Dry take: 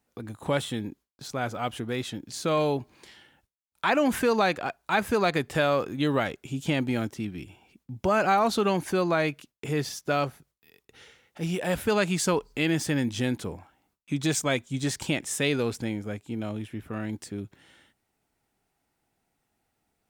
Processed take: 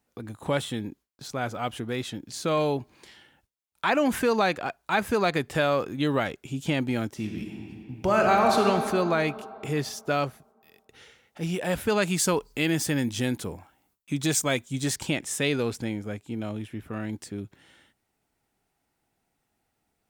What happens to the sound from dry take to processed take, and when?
7.11–8.61 reverb throw, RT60 2.9 s, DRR 1.5 dB
12.02–14.96 high shelf 8400 Hz +9 dB

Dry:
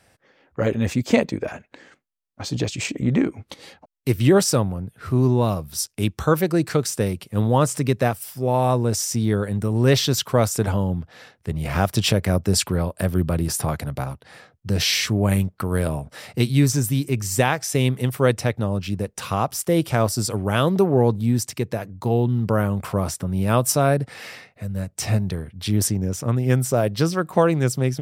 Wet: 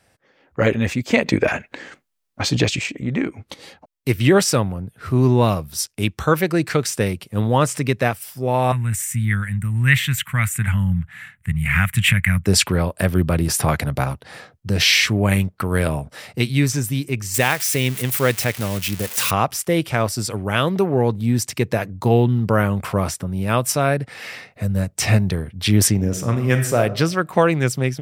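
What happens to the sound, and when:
1.26–2.79 gain +9.5 dB
8.72–12.46 EQ curve 170 Hz 0 dB, 450 Hz -30 dB, 2000 Hz +6 dB, 3000 Hz -4 dB, 5200 Hz -21 dB, 7800 Hz 0 dB
17.34–19.31 switching spikes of -17 dBFS
25.93–26.78 reverb throw, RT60 0.81 s, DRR 6 dB
whole clip: dynamic EQ 2200 Hz, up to +8 dB, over -41 dBFS, Q 1; AGC; gain -2 dB

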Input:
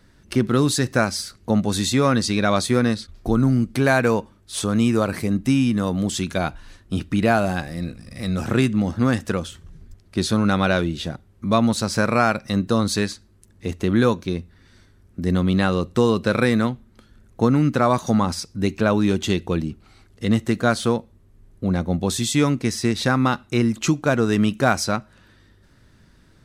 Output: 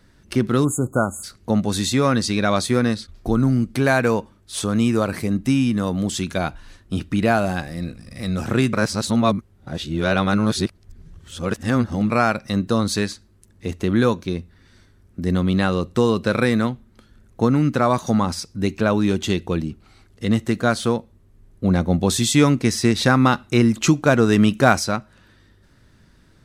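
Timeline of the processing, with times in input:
0.65–1.24 spectral delete 1500–6500 Hz
8.73–12.1 reverse
21.64–24.79 gain +3.5 dB

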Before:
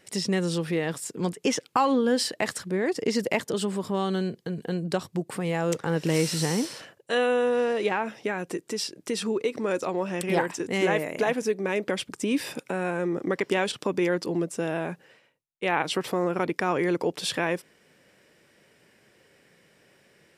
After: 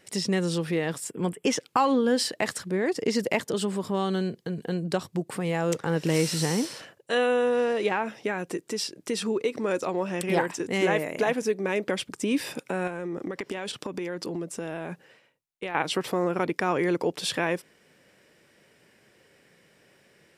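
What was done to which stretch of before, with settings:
1.08–1.46 spectral gain 3500–7400 Hz -13 dB
12.87–15.75 compressor 10:1, threshold -28 dBFS

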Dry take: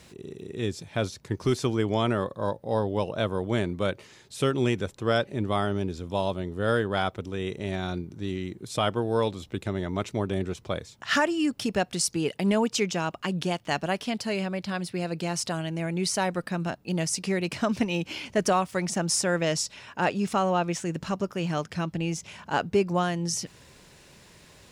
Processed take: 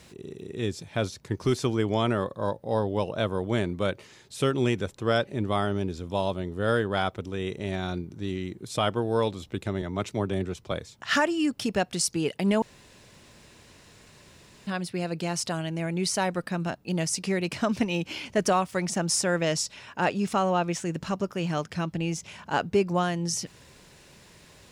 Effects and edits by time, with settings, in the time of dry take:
9.82–10.72 three-band expander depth 40%
12.62–14.67 room tone

